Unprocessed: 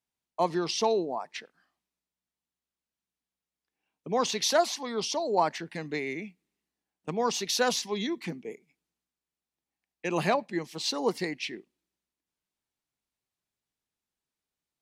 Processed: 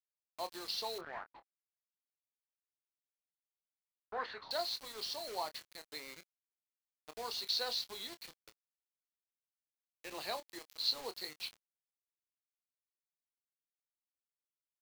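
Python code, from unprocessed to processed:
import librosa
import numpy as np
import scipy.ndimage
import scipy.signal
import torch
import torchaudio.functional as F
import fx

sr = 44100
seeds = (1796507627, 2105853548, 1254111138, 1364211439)

y = scipy.signal.sosfilt(scipy.signal.butter(2, 530.0, 'highpass', fs=sr, output='sos'), x)
y = fx.peak_eq(y, sr, hz=2600.0, db=-4.5, octaves=2.8)
y = fx.quant_float(y, sr, bits=2)
y = fx.ladder_lowpass(y, sr, hz=4500.0, resonance_pct=80)
y = fx.quant_dither(y, sr, seeds[0], bits=8, dither='none')
y = fx.filter_lfo_lowpass(y, sr, shape='sine', hz=1.6, low_hz=750.0, high_hz=1800.0, q=7.2, at=(0.98, 4.51))
y = fx.doubler(y, sr, ms=26.0, db=-11.0)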